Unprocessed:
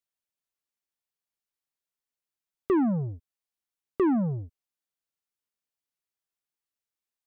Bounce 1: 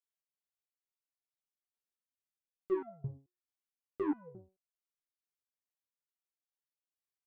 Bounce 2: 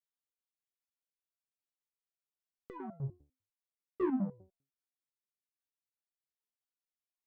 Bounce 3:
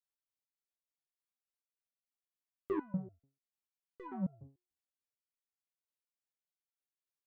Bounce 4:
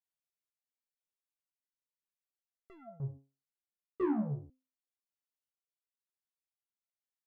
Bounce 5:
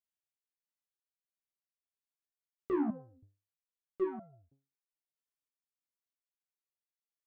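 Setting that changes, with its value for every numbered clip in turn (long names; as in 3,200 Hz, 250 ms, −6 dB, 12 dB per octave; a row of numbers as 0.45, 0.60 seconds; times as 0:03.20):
step-sequenced resonator, speed: 4.6, 10, 6.8, 2, 3.1 Hertz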